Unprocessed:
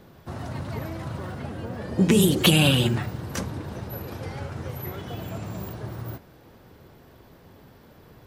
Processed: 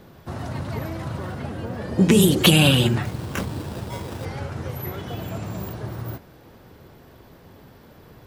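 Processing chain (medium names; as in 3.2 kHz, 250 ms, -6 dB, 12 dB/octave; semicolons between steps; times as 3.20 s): 3.05–4.25 s: sample-rate reducer 4.3 kHz, jitter 0%; trim +3 dB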